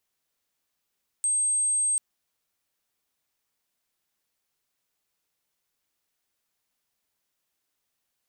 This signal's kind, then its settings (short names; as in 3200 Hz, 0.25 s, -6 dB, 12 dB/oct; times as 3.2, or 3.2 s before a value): tone sine 8400 Hz -21.5 dBFS 0.74 s